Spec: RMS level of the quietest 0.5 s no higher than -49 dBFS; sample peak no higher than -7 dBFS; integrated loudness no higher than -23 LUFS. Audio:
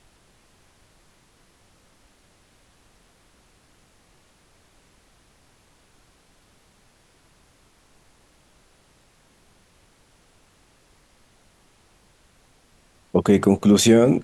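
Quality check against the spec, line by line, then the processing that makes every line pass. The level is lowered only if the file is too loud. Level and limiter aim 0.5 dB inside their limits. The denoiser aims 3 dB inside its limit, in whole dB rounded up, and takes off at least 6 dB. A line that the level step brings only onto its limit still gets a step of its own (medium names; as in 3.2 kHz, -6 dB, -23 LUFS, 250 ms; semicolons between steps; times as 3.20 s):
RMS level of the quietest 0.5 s -58 dBFS: pass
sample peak -5.0 dBFS: fail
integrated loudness -17.0 LUFS: fail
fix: trim -6.5 dB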